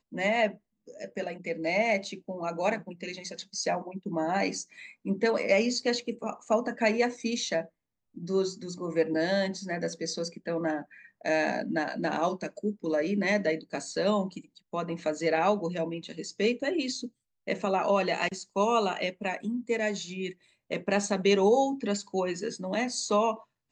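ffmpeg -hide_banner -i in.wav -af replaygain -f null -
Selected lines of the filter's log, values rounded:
track_gain = +8.9 dB
track_peak = 0.185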